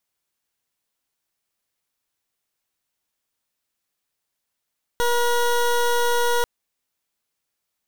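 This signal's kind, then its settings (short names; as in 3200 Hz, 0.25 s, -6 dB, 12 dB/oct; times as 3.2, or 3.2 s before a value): pulse 479 Hz, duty 20% -19.5 dBFS 1.44 s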